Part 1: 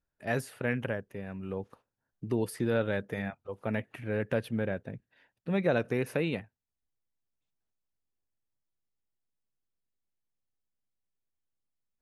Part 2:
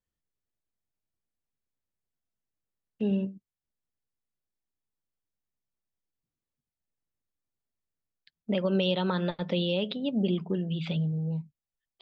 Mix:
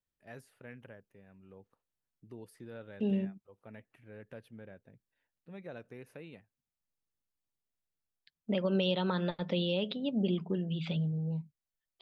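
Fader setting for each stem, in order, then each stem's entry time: -18.5 dB, -3.5 dB; 0.00 s, 0.00 s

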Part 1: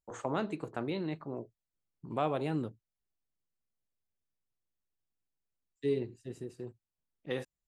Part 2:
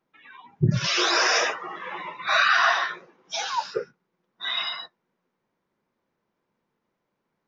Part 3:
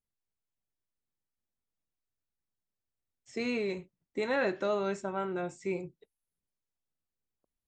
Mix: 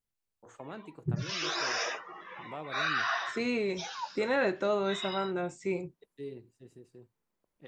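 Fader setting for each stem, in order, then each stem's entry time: -10.5 dB, -11.0 dB, +1.5 dB; 0.35 s, 0.45 s, 0.00 s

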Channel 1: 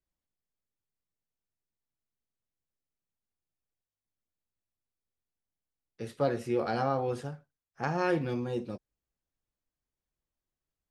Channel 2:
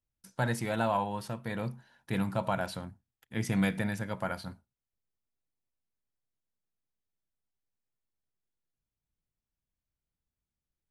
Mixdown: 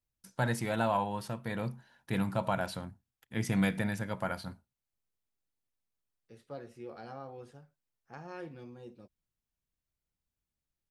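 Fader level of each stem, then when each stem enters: -15.5 dB, -0.5 dB; 0.30 s, 0.00 s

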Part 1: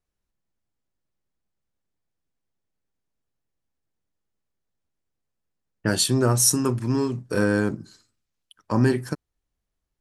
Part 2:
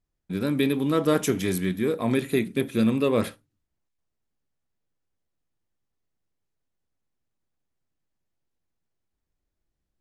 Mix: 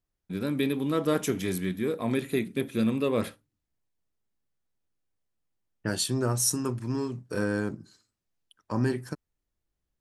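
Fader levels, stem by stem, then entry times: -7.0 dB, -4.0 dB; 0.00 s, 0.00 s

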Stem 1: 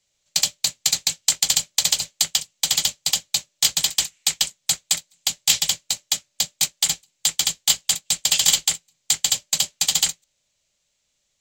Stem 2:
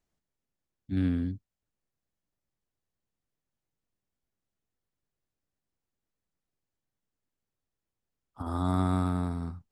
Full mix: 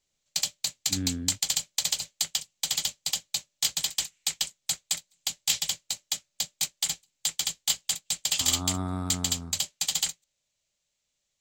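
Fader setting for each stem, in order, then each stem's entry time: -8.0 dB, -4.5 dB; 0.00 s, 0.00 s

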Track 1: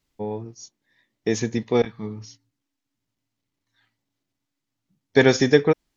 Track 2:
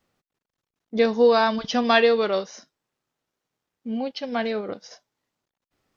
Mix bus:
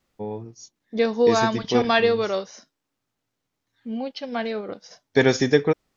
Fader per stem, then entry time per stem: -2.0 dB, -1.5 dB; 0.00 s, 0.00 s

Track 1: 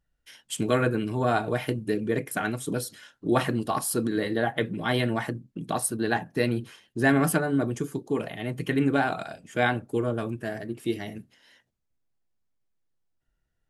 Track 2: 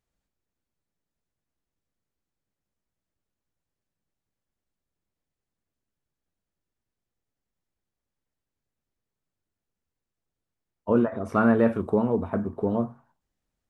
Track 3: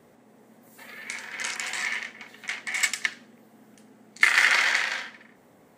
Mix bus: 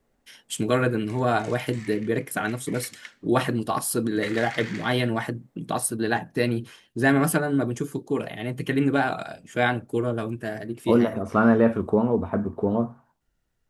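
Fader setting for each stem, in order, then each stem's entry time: +1.5 dB, +2.0 dB, -16.0 dB; 0.00 s, 0.00 s, 0.00 s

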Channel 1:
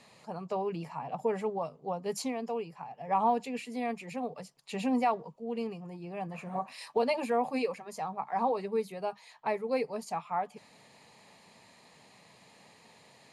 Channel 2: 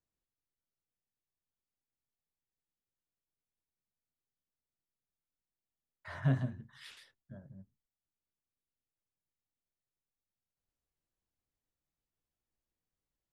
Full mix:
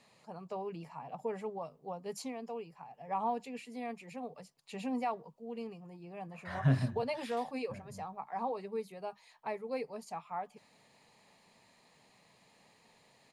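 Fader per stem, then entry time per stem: -7.0 dB, +2.0 dB; 0.00 s, 0.40 s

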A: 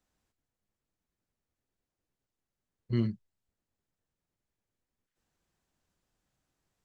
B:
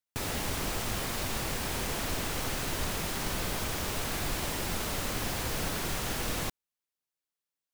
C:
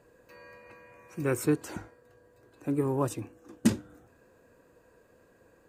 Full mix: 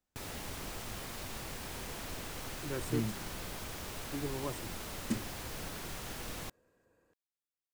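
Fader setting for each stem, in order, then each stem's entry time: -6.0 dB, -9.5 dB, -11.0 dB; 0.00 s, 0.00 s, 1.45 s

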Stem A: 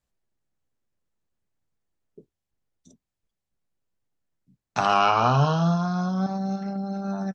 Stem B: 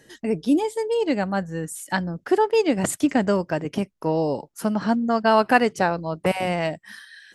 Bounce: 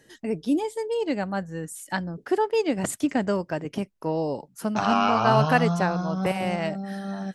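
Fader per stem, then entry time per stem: -3.0 dB, -4.0 dB; 0.00 s, 0.00 s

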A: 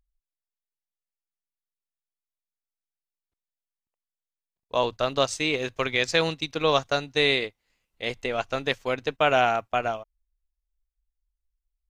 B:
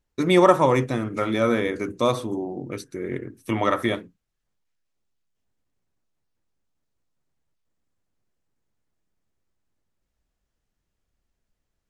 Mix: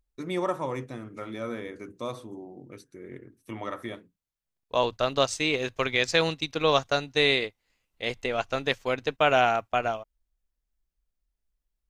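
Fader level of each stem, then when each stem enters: -0.5 dB, -13.0 dB; 0.00 s, 0.00 s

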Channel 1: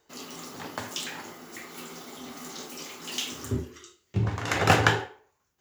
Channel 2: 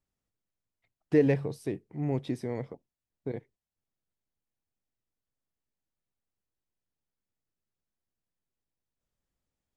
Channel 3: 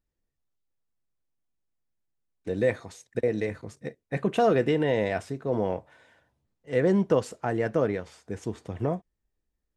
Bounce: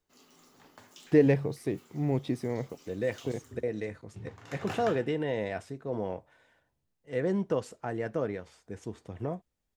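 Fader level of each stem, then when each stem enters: -19.0 dB, +1.5 dB, -6.5 dB; 0.00 s, 0.00 s, 0.40 s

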